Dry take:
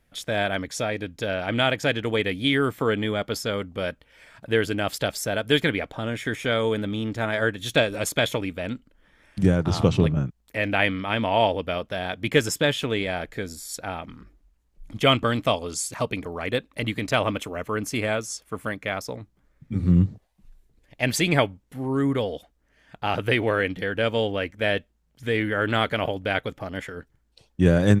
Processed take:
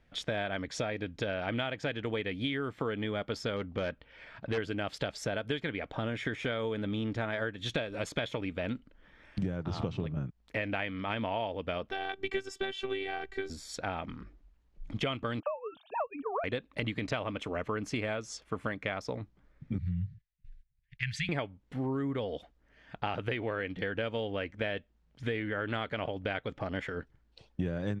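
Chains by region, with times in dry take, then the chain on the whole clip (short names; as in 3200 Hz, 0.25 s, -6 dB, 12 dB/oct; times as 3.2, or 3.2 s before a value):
3.56–4.58 LPF 5100 Hz + hard clip -22.5 dBFS
11.91–13.5 bell 100 Hz -12 dB 0.28 oct + robotiser 387 Hz
15.4–16.44 sine-wave speech + fixed phaser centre 830 Hz, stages 4 + three-band squash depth 100%
19.78–21.29 gate -56 dBFS, range -16 dB + elliptic band-stop 150–1700 Hz + high shelf 3400 Hz -7 dB
whole clip: LPF 4300 Hz 12 dB/oct; compressor 10:1, threshold -30 dBFS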